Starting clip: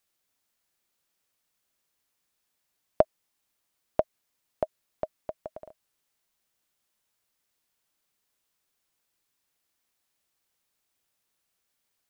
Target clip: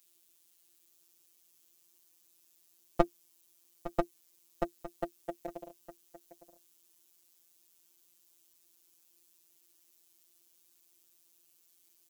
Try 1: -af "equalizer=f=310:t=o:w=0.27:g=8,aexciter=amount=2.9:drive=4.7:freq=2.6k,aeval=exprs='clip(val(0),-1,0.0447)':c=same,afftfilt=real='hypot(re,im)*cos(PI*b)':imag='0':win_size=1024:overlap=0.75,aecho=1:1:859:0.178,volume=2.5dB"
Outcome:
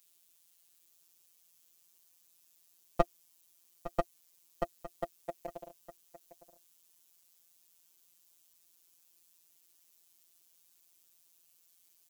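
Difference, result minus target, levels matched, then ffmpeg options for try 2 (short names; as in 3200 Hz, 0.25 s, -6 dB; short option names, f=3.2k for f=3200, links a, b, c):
250 Hz band -4.5 dB
-af "equalizer=f=310:t=o:w=0.27:g=18,aexciter=amount=2.9:drive=4.7:freq=2.6k,aeval=exprs='clip(val(0),-1,0.0447)':c=same,afftfilt=real='hypot(re,im)*cos(PI*b)':imag='0':win_size=1024:overlap=0.75,aecho=1:1:859:0.178,volume=2.5dB"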